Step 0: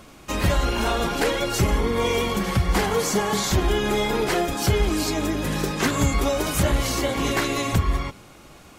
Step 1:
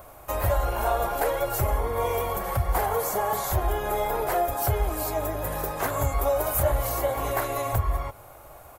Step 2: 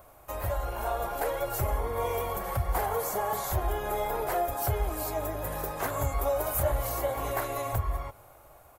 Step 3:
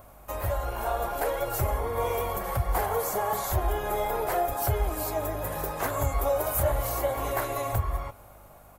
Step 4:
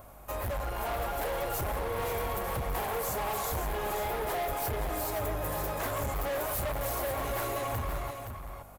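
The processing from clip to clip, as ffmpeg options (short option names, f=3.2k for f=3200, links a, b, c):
-filter_complex "[0:a]asplit=2[a][b];[b]acompressor=threshold=-30dB:ratio=6,volume=-1.5dB[c];[a][c]amix=inputs=2:normalize=0,firequalizer=gain_entry='entry(110,0);entry(190,-16);entry(620,7);entry(1100,1);entry(2000,-6);entry(2900,-11);entry(5500,-11);entry(13000,11)':delay=0.05:min_phase=1,volume=-5dB"
-af "dynaudnorm=f=320:g=7:m=3.5dB,volume=-7.5dB"
-af "aeval=exprs='val(0)+0.00141*(sin(2*PI*50*n/s)+sin(2*PI*2*50*n/s)/2+sin(2*PI*3*50*n/s)/3+sin(2*PI*4*50*n/s)/4+sin(2*PI*5*50*n/s)/5)':c=same,flanger=delay=3:depth=8.3:regen=-80:speed=0.84:shape=sinusoidal,volume=6.5dB"
-af "asoftclip=type=hard:threshold=-31dB,aecho=1:1:520:0.422"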